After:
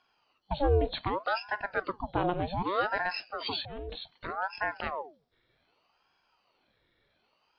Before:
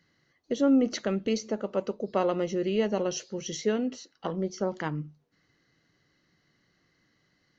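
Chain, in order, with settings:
hearing-aid frequency compression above 3,400 Hz 4 to 1
0:03.40–0:04.31: compressor whose output falls as the input rises −34 dBFS, ratio −1
ring modulator whose carrier an LFO sweeps 720 Hz, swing 75%, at 0.65 Hz

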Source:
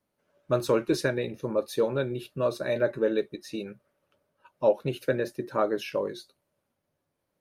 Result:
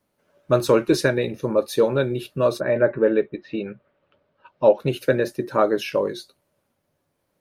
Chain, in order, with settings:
0:02.59–0:04.78: low-pass filter 2,100 Hz → 5,000 Hz 24 dB per octave
level +7 dB

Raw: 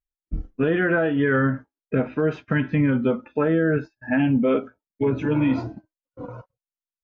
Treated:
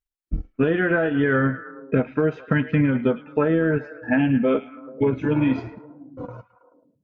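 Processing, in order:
transient designer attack +3 dB, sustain −6 dB
echo through a band-pass that steps 108 ms, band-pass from 2,600 Hz, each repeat −0.7 octaves, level −10.5 dB

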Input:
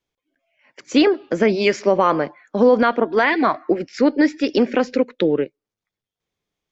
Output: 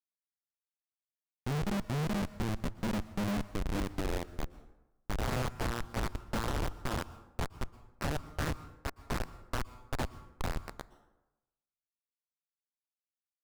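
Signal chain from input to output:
samples sorted by size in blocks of 16 samples
high-shelf EQ 2,400 Hz −7 dB
transient designer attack +2 dB, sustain −10 dB
Chebyshev band-pass filter 100–2,900 Hz, order 2
low-shelf EQ 130 Hz +7 dB
backwards echo 217 ms −7 dB
band-pass filter sweep 400 Hz → 2,100 Hz, 0:01.58–0:02.61
wrong playback speed 15 ips tape played at 7.5 ips
downward compressor 5 to 1, threshold −26 dBFS, peak gain reduction 12 dB
comparator with hysteresis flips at −26.5 dBFS
on a send at −17 dB: convolution reverb RT60 1.0 s, pre-delay 108 ms
on the sum: highs frequency-modulated by the lows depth 0.93 ms
level +2 dB

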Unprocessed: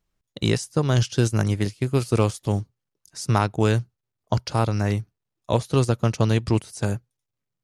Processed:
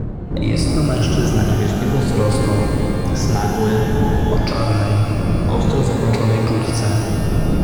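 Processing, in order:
rippled gain that drifts along the octave scale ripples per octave 1, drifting +0.51 Hz, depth 14 dB
wind on the microphone 160 Hz −31 dBFS
low-pass filter 2,200 Hz 6 dB per octave
leveller curve on the samples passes 1
in parallel at −1 dB: compressor whose output falls as the input rises −29 dBFS
on the sum: brickwall limiter −17 dBFS, peak gain reduction 13 dB
on a send: echo through a band-pass that steps 198 ms, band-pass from 210 Hz, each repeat 0.7 octaves, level −4 dB
on the sum: reverb with rising layers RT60 2.9 s, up +12 semitones, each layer −8 dB, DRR −0.5 dB
level +4 dB

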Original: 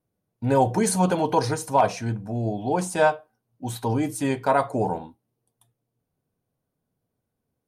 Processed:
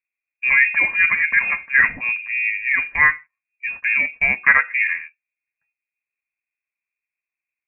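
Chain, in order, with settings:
0:03.90–0:04.68: transient designer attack +5 dB, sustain −4 dB
voice inversion scrambler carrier 2,600 Hz
noise gate −37 dBFS, range −13 dB
level +4 dB

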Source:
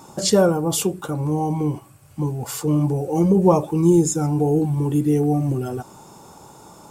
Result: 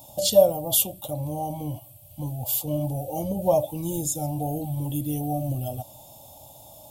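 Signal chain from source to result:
drawn EQ curve 120 Hz 0 dB, 170 Hz −14 dB, 280 Hz −8 dB, 410 Hz −24 dB, 600 Hz +6 dB, 1,500 Hz −30 dB, 3,300 Hz +4 dB, 5,100 Hz −5 dB, 7,900 Hz −4 dB, 13,000 Hz +13 dB

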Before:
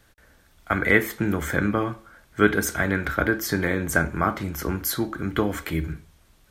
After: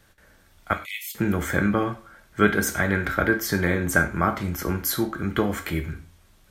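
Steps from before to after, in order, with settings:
0:00.73–0:01.15: Butterworth high-pass 2,400 Hz 72 dB per octave
reverb whose tail is shaped and stops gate 140 ms falling, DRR 7.5 dB

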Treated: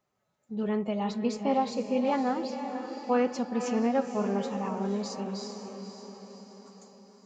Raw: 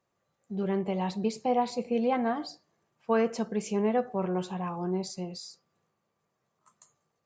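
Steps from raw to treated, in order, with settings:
feedback delay with all-pass diffusion 507 ms, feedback 55%, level −8 dB
phase-vocoder pitch shift with formants kept +1.5 semitones

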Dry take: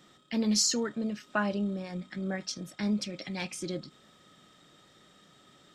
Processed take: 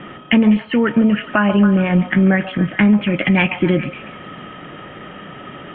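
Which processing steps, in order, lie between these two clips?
downward compressor 6 to 1, threshold −34 dBFS, peak gain reduction 11.5 dB
dynamic equaliser 550 Hz, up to −5 dB, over −53 dBFS, Q 0.73
Butterworth low-pass 3,100 Hz 96 dB per octave
echo through a band-pass that steps 139 ms, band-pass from 770 Hz, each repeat 0.7 octaves, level −8 dB
boost into a limiter +26 dB

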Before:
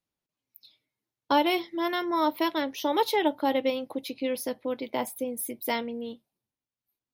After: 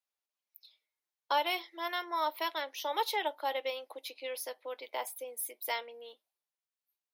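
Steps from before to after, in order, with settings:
Bessel high-pass filter 700 Hz, order 6
level −3.5 dB

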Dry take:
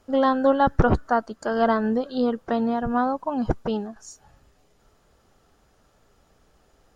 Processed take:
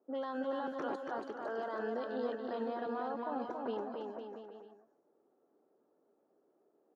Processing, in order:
low-pass that shuts in the quiet parts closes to 460 Hz, open at −15.5 dBFS
Chebyshev high-pass filter 320 Hz, order 3
brickwall limiter −26.5 dBFS, peak gain reduction 17.5 dB
bouncing-ball delay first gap 280 ms, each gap 0.8×, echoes 5
every ending faded ahead of time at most 210 dB per second
level −5 dB

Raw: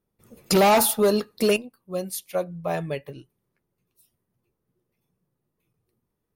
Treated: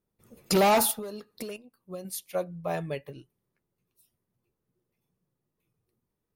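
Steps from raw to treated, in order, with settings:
0:00.91–0:02.05: downward compressor 16 to 1, threshold −31 dBFS, peak gain reduction 15.5 dB
level −4 dB

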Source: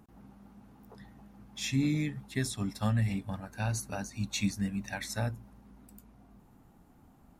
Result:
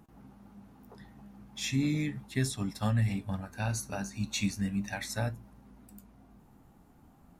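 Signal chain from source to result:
flanger 0.37 Hz, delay 5.8 ms, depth 9.6 ms, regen +73%
level +5 dB

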